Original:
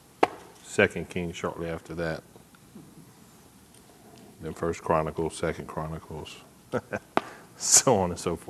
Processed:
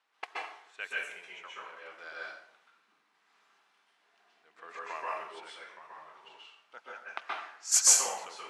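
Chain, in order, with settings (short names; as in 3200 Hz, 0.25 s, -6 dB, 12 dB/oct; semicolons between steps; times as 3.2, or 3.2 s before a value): HPF 1400 Hz 12 dB/oct; low-pass opened by the level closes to 2500 Hz, open at -22.5 dBFS; random-step tremolo; plate-style reverb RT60 0.63 s, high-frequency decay 0.8×, pre-delay 0.115 s, DRR -5.5 dB; gain -7 dB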